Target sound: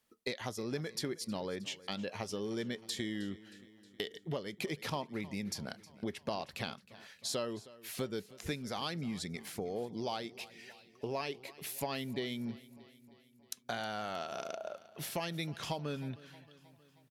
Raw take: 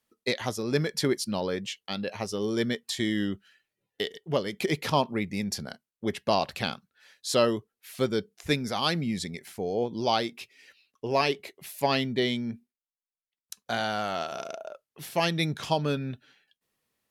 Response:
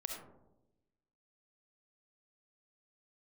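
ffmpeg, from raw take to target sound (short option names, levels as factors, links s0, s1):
-filter_complex "[0:a]acompressor=threshold=0.0126:ratio=4,asplit=2[s0][s1];[s1]aecho=0:1:314|628|942|1256|1570:0.112|0.0662|0.0391|0.023|0.0136[s2];[s0][s2]amix=inputs=2:normalize=0,volume=1.12"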